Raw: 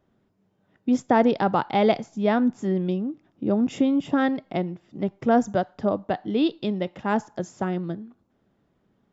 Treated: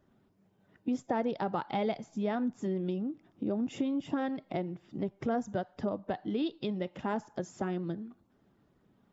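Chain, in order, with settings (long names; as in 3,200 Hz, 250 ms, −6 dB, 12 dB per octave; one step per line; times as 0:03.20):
spectral magnitudes quantised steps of 15 dB
downward compressor 2.5 to 1, threshold −34 dBFS, peak gain reduction 13.5 dB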